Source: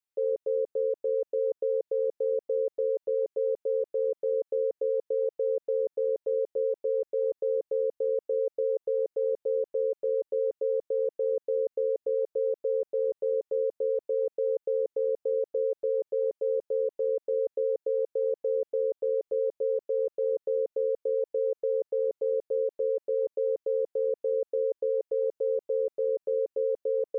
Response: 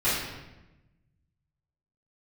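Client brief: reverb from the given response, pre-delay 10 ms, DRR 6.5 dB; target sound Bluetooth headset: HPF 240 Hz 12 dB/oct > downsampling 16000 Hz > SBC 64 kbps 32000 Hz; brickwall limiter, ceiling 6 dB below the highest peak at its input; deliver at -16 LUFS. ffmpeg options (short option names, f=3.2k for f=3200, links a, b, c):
-filter_complex "[0:a]alimiter=level_in=2.5dB:limit=-24dB:level=0:latency=1,volume=-2.5dB,asplit=2[a][b];[1:a]atrim=start_sample=2205,adelay=10[c];[b][c]afir=irnorm=-1:irlink=0,volume=-20.5dB[d];[a][d]amix=inputs=2:normalize=0,highpass=240,aresample=16000,aresample=44100,volume=17.5dB" -ar 32000 -c:a sbc -b:a 64k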